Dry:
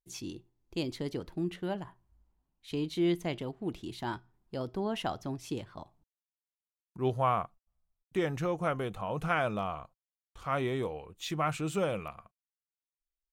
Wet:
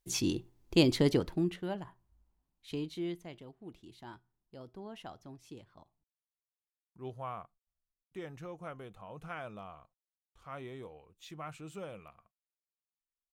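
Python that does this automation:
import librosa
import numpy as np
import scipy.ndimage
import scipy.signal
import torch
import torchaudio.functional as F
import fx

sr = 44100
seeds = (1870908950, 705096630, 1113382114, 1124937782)

y = fx.gain(x, sr, db=fx.line((1.11, 9.5), (1.64, -2.5), (2.72, -2.5), (3.26, -13.0)))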